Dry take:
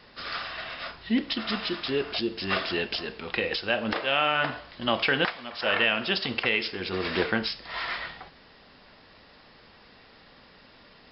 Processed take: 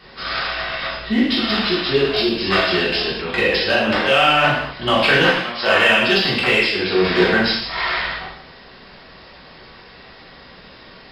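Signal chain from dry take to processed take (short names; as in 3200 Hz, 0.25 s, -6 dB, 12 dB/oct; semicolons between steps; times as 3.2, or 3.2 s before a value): in parallel at -5 dB: hard clip -21 dBFS, distortion -11 dB; on the sum: non-linear reverb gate 0.28 s falling, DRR -7 dB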